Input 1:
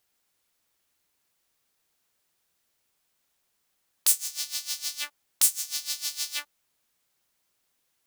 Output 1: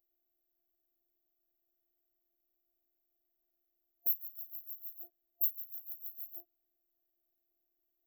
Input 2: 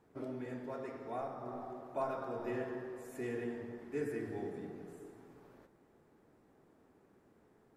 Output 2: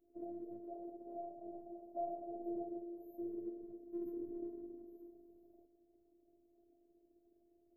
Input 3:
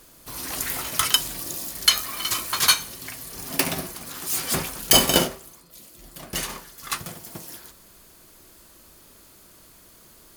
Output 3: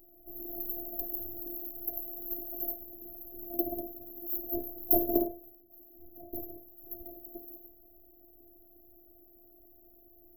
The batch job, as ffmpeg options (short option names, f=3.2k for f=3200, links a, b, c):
-af "afftfilt=real='re*(1-between(b*sr/4096,680,12000))':imag='im*(1-between(b*sr/4096,680,12000))':win_size=4096:overlap=0.75,afftfilt=real='hypot(re,im)*cos(PI*b)':imag='0':win_size=512:overlap=0.75,volume=-1dB"